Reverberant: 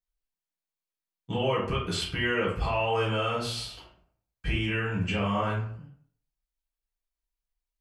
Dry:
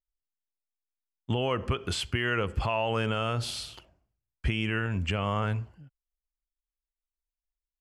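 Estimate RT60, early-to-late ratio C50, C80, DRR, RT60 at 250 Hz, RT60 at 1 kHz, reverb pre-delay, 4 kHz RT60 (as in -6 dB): 0.55 s, 5.0 dB, 9.0 dB, -7.0 dB, 0.55 s, 0.55 s, 3 ms, 0.35 s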